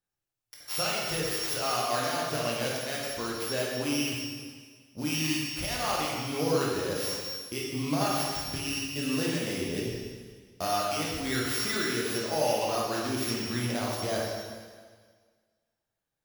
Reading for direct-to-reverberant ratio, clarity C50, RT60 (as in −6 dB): −5.0 dB, −0.5 dB, 1.6 s